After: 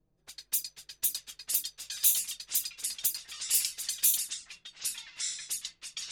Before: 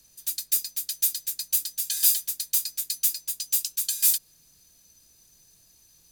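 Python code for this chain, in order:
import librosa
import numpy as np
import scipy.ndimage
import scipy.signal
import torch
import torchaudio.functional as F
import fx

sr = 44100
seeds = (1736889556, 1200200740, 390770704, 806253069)

y = fx.env_flanger(x, sr, rest_ms=6.6, full_db=-19.0)
y = fx.env_lowpass(y, sr, base_hz=600.0, full_db=-24.5)
y = fx.echo_pitch(y, sr, ms=780, semitones=-5, count=3, db_per_echo=-6.0)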